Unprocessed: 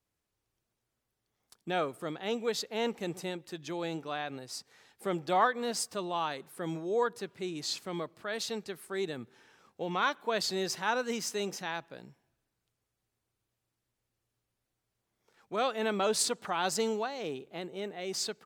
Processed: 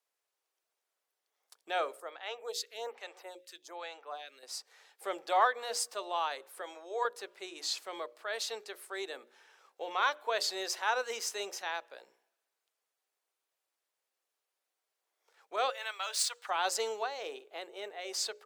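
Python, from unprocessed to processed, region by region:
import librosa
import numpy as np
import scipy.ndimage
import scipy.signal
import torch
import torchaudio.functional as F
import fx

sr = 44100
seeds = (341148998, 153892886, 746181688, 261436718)

y = fx.chain(x, sr, fx.highpass(hz=570.0, slope=6),
    fx.stagger_phaser(hz=1.2), at=(2.0, 4.43))
y = fx.chain(y, sr, fx.highpass(hz=480.0, slope=12),
    fx.high_shelf(hz=11000.0, db=-10.0), at=(6.61, 7.05))
y = fx.chain(y, sr, fx.median_filter(points=3),
    fx.highpass(hz=1400.0, slope=12), at=(15.7, 16.49))
y = scipy.signal.sosfilt(scipy.signal.butter(4, 460.0, 'highpass', fs=sr, output='sos'), y)
y = fx.hum_notches(y, sr, base_hz=60, count=10)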